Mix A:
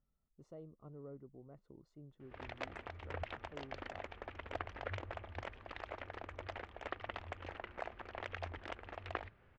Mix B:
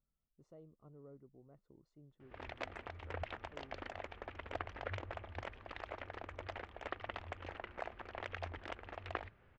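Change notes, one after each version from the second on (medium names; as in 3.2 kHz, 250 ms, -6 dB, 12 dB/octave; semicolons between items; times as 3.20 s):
speech -5.5 dB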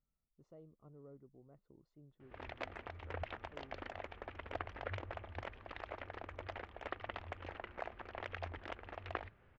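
master: add distance through air 62 m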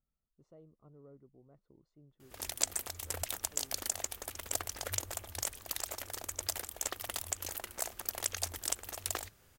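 background: remove low-pass 2.5 kHz 24 dB/octave; master: remove distance through air 62 m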